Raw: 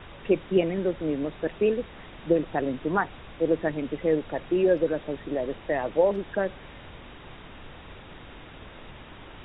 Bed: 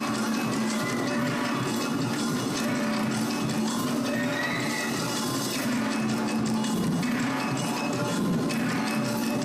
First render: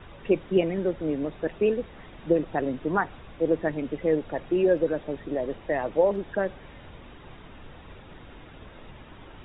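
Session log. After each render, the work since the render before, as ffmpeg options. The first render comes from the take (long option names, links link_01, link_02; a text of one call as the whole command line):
ffmpeg -i in.wav -af "afftdn=noise_reduction=6:noise_floor=-46" out.wav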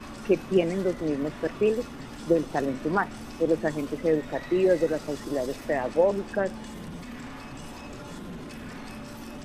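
ffmpeg -i in.wav -i bed.wav -filter_complex "[1:a]volume=-14dB[link_01];[0:a][link_01]amix=inputs=2:normalize=0" out.wav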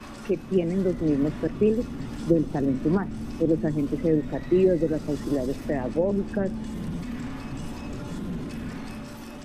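ffmpeg -i in.wav -filter_complex "[0:a]acrossover=split=330[link_01][link_02];[link_01]dynaudnorm=framelen=130:gausssize=11:maxgain=8.5dB[link_03];[link_02]alimiter=limit=-23.5dB:level=0:latency=1:release=483[link_04];[link_03][link_04]amix=inputs=2:normalize=0" out.wav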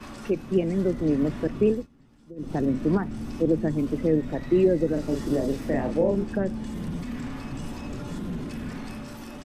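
ffmpeg -i in.wav -filter_complex "[0:a]asplit=3[link_01][link_02][link_03];[link_01]afade=type=out:start_time=4.96:duration=0.02[link_04];[link_02]asplit=2[link_05][link_06];[link_06]adelay=37,volume=-4.5dB[link_07];[link_05][link_07]amix=inputs=2:normalize=0,afade=type=in:start_time=4.96:duration=0.02,afade=type=out:start_time=6.23:duration=0.02[link_08];[link_03]afade=type=in:start_time=6.23:duration=0.02[link_09];[link_04][link_08][link_09]amix=inputs=3:normalize=0,asplit=3[link_10][link_11][link_12];[link_10]atrim=end=1.87,asetpts=PTS-STARTPTS,afade=type=out:start_time=1.71:duration=0.16:silence=0.0707946[link_13];[link_11]atrim=start=1.87:end=2.36,asetpts=PTS-STARTPTS,volume=-23dB[link_14];[link_12]atrim=start=2.36,asetpts=PTS-STARTPTS,afade=type=in:duration=0.16:silence=0.0707946[link_15];[link_13][link_14][link_15]concat=n=3:v=0:a=1" out.wav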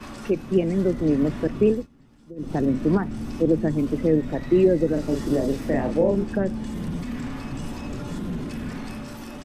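ffmpeg -i in.wav -af "volume=2.5dB" out.wav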